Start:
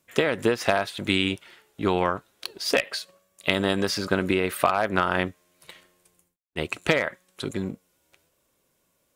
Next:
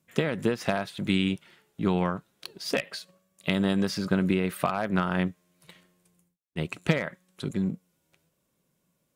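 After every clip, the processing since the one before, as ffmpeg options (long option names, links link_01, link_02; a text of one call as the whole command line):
ffmpeg -i in.wav -af "equalizer=frequency=170:width_type=o:width=0.98:gain=13,volume=-6.5dB" out.wav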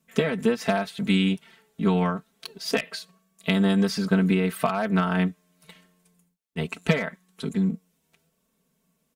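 ffmpeg -i in.wav -af "aecho=1:1:4.5:0.91" out.wav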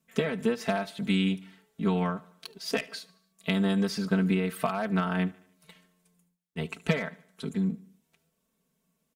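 ffmpeg -i in.wav -af "aecho=1:1:74|148|222|296:0.0794|0.0429|0.0232|0.0125,volume=-4.5dB" out.wav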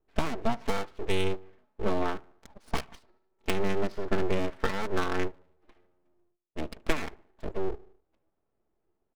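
ffmpeg -i in.wav -af "adynamicsmooth=sensitivity=2.5:basefreq=990,aeval=exprs='abs(val(0))':channel_layout=same,volume=2dB" out.wav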